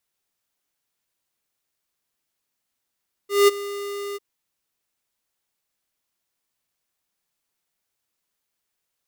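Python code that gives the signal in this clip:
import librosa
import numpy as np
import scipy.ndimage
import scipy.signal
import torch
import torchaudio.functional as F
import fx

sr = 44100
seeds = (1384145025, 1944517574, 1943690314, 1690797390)

y = fx.adsr_tone(sr, wave='square', hz=404.0, attack_ms=188.0, decay_ms=21.0, sustain_db=-18.0, held_s=0.87, release_ms=27.0, level_db=-12.5)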